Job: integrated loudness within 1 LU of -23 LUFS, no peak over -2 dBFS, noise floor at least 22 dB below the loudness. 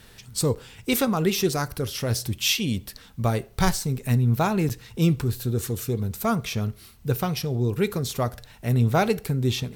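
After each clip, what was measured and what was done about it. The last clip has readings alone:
dropouts 2; longest dropout 8.1 ms; loudness -25.0 LUFS; peak -8.5 dBFS; loudness target -23.0 LUFS
-> interpolate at 0.55/4.69, 8.1 ms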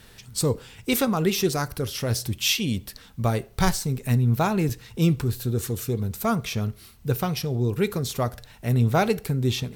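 dropouts 0; loudness -25.0 LUFS; peak -8.5 dBFS; loudness target -23.0 LUFS
-> gain +2 dB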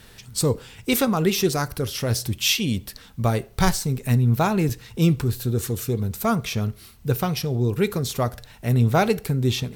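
loudness -23.0 LUFS; peak -6.5 dBFS; noise floor -48 dBFS

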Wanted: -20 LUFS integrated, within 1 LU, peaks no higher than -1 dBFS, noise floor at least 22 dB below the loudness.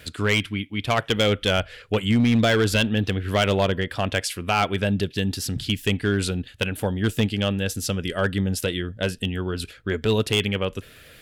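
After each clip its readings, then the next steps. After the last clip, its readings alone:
clipped 0.8%; flat tops at -13.5 dBFS; loudness -23.5 LUFS; peak -13.5 dBFS; loudness target -20.0 LUFS
-> clip repair -13.5 dBFS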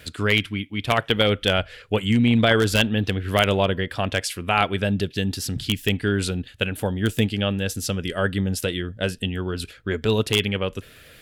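clipped 0.0%; loudness -23.0 LUFS; peak -4.5 dBFS; loudness target -20.0 LUFS
-> gain +3 dB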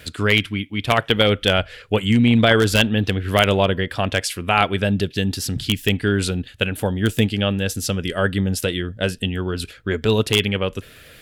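loudness -20.0 LUFS; peak -1.5 dBFS; noise floor -46 dBFS

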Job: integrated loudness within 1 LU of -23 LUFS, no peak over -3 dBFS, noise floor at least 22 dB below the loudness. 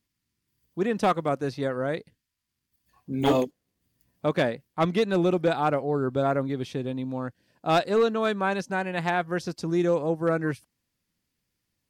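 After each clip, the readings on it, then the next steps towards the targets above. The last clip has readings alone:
clipped 0.5%; flat tops at -15.0 dBFS; loudness -26.5 LUFS; peak -15.0 dBFS; loudness target -23.0 LUFS
-> clip repair -15 dBFS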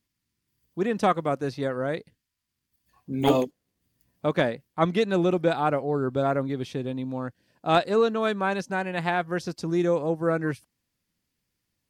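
clipped 0.0%; loudness -26.5 LUFS; peak -8.0 dBFS; loudness target -23.0 LUFS
-> gain +3.5 dB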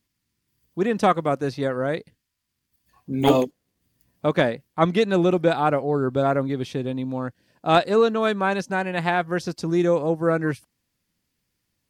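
loudness -23.0 LUFS; peak -4.5 dBFS; noise floor -78 dBFS

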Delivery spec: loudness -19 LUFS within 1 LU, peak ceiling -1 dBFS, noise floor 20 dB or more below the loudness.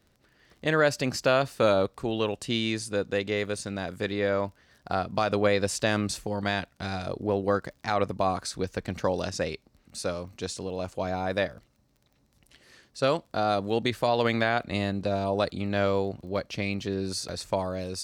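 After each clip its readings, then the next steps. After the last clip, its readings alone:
ticks 23/s; loudness -28.5 LUFS; peak -12.5 dBFS; loudness target -19.0 LUFS
-> de-click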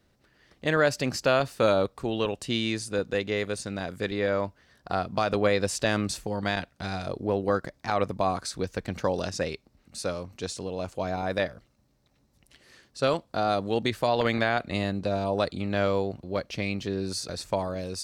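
ticks 0.11/s; loudness -28.5 LUFS; peak -12.0 dBFS; loudness target -19.0 LUFS
-> gain +9.5 dB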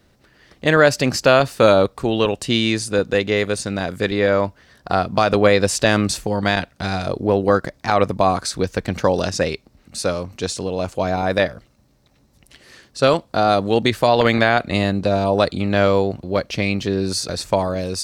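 loudness -19.0 LUFS; peak -2.5 dBFS; noise floor -58 dBFS

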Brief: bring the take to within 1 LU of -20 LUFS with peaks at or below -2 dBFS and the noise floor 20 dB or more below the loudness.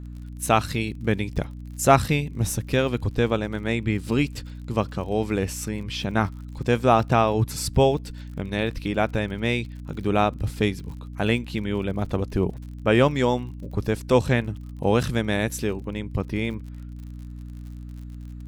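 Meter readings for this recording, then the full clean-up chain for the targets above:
ticks 54/s; hum 60 Hz; harmonics up to 300 Hz; hum level -34 dBFS; loudness -24.5 LUFS; peak -2.5 dBFS; loudness target -20.0 LUFS
-> de-click; de-hum 60 Hz, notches 5; gain +4.5 dB; limiter -2 dBFS

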